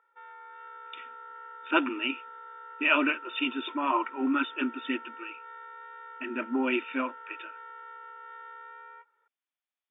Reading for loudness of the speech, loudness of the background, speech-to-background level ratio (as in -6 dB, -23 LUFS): -29.5 LUFS, -45.5 LUFS, 16.0 dB